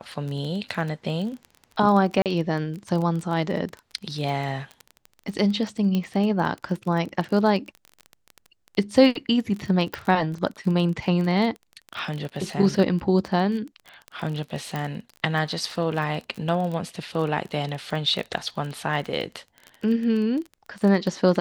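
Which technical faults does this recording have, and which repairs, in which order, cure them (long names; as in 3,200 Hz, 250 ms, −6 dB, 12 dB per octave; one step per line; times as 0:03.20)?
surface crackle 24 per second −29 dBFS
0:02.22–0:02.26: drop-out 38 ms
0:05.95: click −15 dBFS
0:09.94: click
0:14.76: click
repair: click removal
repair the gap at 0:02.22, 38 ms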